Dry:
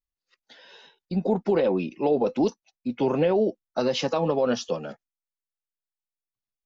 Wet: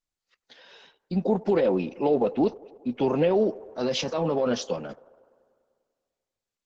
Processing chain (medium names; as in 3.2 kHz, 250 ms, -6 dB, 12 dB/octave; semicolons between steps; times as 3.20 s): 2.14–2.91 s: low-pass 3.7 kHz 24 dB/octave; feedback echo behind a band-pass 99 ms, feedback 70%, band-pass 690 Hz, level -21 dB; 3.43–4.54 s: transient shaper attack -8 dB, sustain +2 dB; Opus 12 kbps 48 kHz